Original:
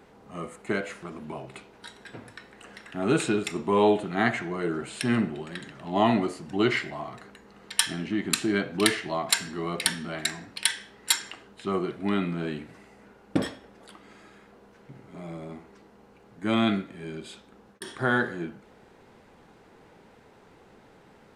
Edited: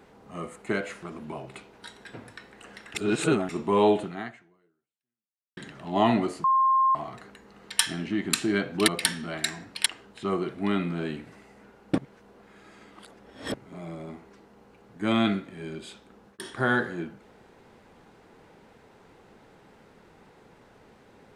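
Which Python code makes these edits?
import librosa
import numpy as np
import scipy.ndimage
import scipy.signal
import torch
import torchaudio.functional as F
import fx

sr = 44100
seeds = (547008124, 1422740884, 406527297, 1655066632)

y = fx.edit(x, sr, fx.reverse_span(start_s=2.95, length_s=0.54),
    fx.fade_out_span(start_s=4.04, length_s=1.53, curve='exp'),
    fx.bleep(start_s=6.44, length_s=0.51, hz=1060.0, db=-18.0),
    fx.cut(start_s=8.88, length_s=0.81),
    fx.cut(start_s=10.67, length_s=0.61),
    fx.reverse_span(start_s=13.4, length_s=1.56), tone=tone)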